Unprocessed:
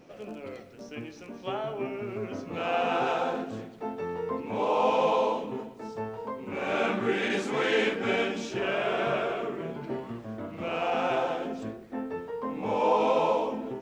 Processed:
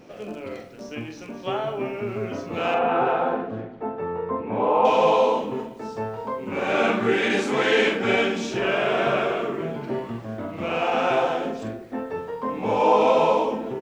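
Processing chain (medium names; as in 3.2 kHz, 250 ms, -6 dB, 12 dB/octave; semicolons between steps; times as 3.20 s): 2.74–4.85 s: low-pass 1.8 kHz 12 dB/octave; doubling 44 ms -7 dB; trim +5.5 dB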